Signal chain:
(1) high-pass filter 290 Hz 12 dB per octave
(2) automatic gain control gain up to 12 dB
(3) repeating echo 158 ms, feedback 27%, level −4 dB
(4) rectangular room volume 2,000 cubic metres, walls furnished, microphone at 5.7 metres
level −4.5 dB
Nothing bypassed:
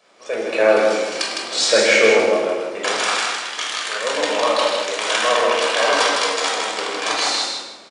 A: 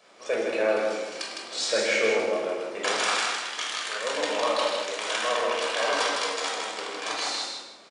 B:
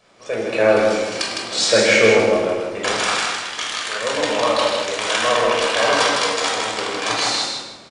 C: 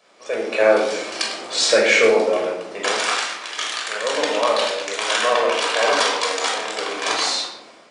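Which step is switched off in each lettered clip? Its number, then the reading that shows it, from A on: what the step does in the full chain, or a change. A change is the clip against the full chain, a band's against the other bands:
2, change in momentary loudness spread −2 LU
1, 250 Hz band +3.5 dB
3, change in integrated loudness −1.5 LU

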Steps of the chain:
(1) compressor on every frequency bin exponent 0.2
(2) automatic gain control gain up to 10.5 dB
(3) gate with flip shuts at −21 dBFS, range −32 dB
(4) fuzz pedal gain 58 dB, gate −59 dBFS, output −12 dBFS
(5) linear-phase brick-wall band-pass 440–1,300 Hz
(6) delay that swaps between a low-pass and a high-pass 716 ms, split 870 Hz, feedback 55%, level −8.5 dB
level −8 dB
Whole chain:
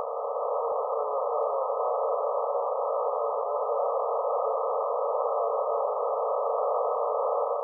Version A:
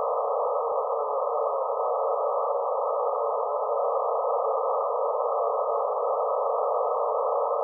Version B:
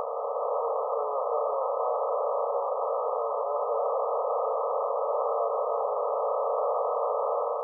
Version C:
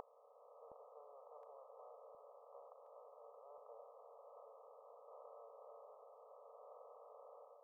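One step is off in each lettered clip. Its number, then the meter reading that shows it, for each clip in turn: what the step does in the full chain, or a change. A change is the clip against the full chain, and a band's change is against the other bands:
3, change in integrated loudness +1.5 LU
6, echo-to-direct ratio −11.5 dB to none audible
4, distortion level −5 dB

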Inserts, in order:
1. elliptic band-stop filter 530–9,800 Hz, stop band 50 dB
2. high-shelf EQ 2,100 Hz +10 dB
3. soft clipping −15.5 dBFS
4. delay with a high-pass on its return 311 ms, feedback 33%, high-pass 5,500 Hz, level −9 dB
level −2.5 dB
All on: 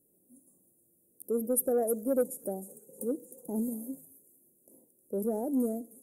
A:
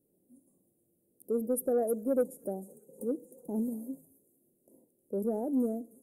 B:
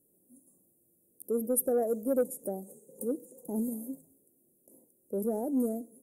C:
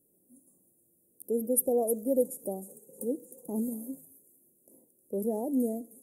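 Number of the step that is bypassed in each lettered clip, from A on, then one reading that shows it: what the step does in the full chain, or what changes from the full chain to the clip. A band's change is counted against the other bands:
2, 8 kHz band −7.5 dB
4, echo-to-direct ratio −27.5 dB to none audible
3, distortion level −20 dB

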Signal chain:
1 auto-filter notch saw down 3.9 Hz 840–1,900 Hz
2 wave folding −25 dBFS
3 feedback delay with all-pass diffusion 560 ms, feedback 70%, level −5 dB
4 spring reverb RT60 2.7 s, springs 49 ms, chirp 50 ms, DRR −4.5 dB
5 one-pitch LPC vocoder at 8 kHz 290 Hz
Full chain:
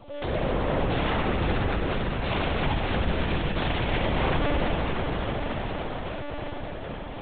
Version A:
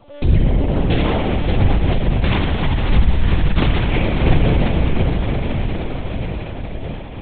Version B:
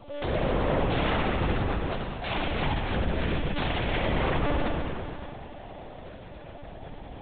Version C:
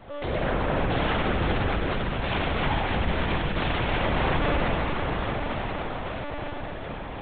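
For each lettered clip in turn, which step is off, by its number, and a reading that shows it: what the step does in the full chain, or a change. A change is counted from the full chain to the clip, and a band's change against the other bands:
2, 125 Hz band +7.5 dB
3, change in momentary loudness spread +8 LU
1, 2 kHz band +2.0 dB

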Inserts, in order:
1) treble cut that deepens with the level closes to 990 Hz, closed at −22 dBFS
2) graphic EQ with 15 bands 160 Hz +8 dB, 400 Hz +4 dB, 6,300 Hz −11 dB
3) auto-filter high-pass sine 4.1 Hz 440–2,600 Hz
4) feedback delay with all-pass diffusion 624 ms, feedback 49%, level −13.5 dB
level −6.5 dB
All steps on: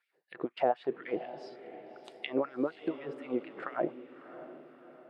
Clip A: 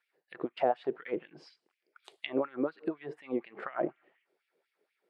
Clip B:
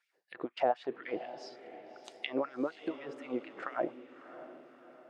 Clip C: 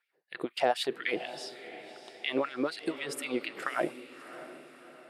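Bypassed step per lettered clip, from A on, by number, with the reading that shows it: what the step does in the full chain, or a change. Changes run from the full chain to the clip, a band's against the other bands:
4, echo-to-direct ratio −12.5 dB to none audible
2, 125 Hz band −5.5 dB
1, 4 kHz band +11.5 dB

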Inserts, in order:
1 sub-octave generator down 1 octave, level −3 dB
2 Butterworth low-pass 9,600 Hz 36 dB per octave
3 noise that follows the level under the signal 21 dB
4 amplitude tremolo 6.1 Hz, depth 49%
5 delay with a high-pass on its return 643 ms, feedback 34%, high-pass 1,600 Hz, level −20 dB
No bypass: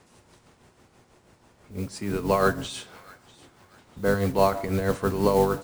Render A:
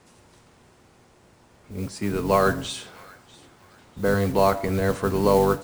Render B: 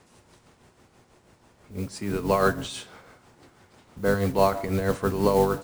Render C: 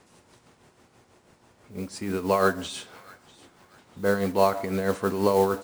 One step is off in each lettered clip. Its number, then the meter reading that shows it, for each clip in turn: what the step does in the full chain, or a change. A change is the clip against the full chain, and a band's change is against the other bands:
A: 4, change in crest factor −2.0 dB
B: 5, echo-to-direct ratio −23.0 dB to none audible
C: 1, 125 Hz band −4.5 dB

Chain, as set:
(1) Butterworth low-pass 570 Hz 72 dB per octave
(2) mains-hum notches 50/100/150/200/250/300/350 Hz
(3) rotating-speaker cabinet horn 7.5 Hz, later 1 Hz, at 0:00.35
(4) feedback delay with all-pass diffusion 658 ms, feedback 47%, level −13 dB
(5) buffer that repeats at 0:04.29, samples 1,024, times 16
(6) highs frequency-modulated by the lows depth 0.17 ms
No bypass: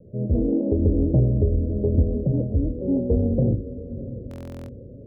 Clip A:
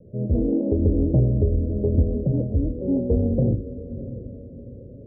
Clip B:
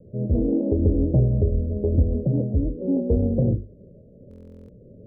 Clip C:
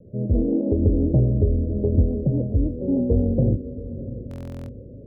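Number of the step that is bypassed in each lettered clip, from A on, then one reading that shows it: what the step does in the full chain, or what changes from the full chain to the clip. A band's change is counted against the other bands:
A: 5, change in momentary loudness spread +1 LU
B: 4, change in momentary loudness spread −11 LU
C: 2, change in momentary loudness spread −1 LU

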